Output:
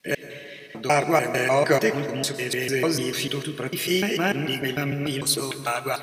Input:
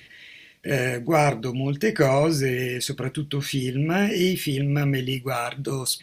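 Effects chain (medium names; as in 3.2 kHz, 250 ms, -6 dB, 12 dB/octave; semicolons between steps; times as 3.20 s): slices played last to first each 149 ms, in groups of 5; high-pass 400 Hz 6 dB/octave; plate-style reverb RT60 2.4 s, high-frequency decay 0.45×, pre-delay 95 ms, DRR 10.5 dB; trim +2.5 dB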